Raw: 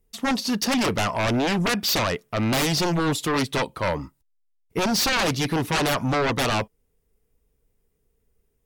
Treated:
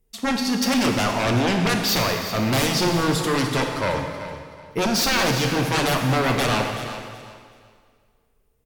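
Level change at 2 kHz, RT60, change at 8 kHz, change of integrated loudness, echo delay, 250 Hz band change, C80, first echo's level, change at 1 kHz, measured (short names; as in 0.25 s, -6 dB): +2.0 dB, 2.0 s, +2.0 dB, +2.0 dB, 0.376 s, +2.0 dB, 5.0 dB, -12.5 dB, +2.0 dB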